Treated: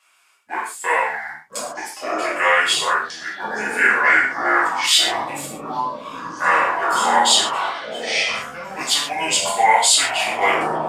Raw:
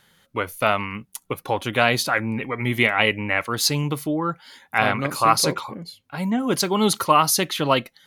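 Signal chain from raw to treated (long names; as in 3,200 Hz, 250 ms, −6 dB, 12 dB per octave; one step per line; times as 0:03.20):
high-pass filter 1,300 Hz 12 dB per octave
in parallel at −6 dB: dead-zone distortion −42 dBFS
on the sum: reverb whose tail is shaped and stops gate 130 ms falling, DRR −7 dB
delay with pitch and tempo change per echo 571 ms, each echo −7 semitones, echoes 3, each echo −6 dB
wrong playback speed 45 rpm record played at 33 rpm
level −5 dB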